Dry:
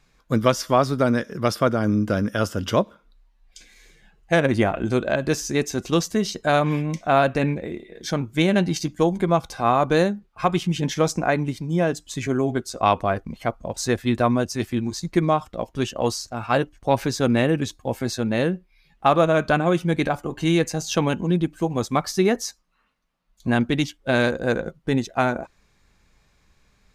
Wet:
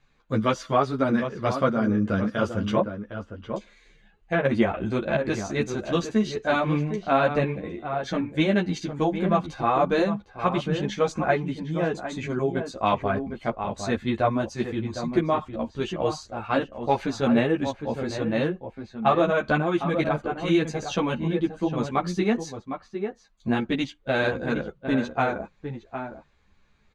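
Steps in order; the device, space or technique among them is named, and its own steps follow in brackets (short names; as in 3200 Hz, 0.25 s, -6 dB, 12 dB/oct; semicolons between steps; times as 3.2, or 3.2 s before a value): notch 5300 Hz, Q 5.8; 2.73–4.45 treble ducked by the level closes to 2200 Hz, closed at -19 dBFS; outdoor echo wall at 130 m, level -8 dB; string-machine ensemble chorus (ensemble effect; LPF 4800 Hz 12 dB/oct)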